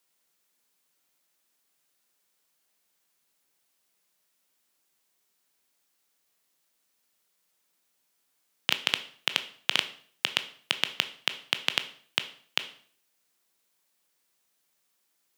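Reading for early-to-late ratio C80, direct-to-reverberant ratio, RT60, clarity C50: 18.0 dB, 9.5 dB, 0.50 s, 14.5 dB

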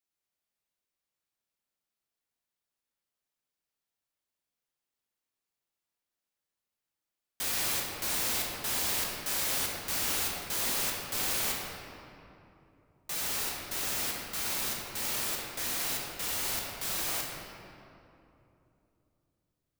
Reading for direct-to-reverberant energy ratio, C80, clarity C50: -2.0 dB, 1.0 dB, 0.0 dB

